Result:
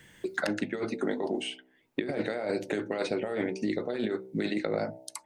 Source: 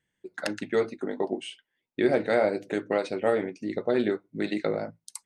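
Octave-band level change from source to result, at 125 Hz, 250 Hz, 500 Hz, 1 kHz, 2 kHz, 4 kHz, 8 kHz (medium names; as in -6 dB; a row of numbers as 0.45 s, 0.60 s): -0.5 dB, -1.5 dB, -5.5 dB, -5.5 dB, -2.0 dB, +1.0 dB, no reading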